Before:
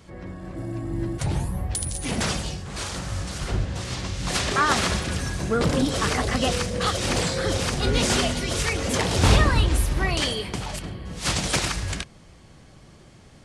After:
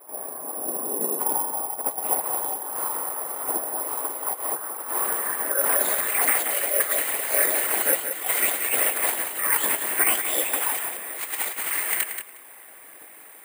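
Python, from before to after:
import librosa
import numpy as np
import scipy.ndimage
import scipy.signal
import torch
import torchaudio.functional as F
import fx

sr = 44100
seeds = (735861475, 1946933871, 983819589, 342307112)

p1 = scipy.signal.sosfilt(scipy.signal.butter(12, 340.0, 'highpass', fs=sr, output='sos'), x)
p2 = fx.high_shelf(p1, sr, hz=2400.0, db=9.0)
p3 = fx.over_compress(p2, sr, threshold_db=-25.0, ratio=-0.5)
p4 = fx.whisperise(p3, sr, seeds[0])
p5 = fx.formant_shift(p4, sr, semitones=2)
p6 = fx.filter_sweep_lowpass(p5, sr, from_hz=950.0, to_hz=2000.0, start_s=4.77, end_s=6.04, q=2.1)
p7 = (np.kron(scipy.signal.resample_poly(p6, 1, 4), np.eye(4)[0]) * 4)[:len(p6)]
p8 = p7 + fx.echo_feedback(p7, sr, ms=180, feedback_pct=15, wet_db=-8.0, dry=0)
y = p8 * librosa.db_to_amplitude(-3.0)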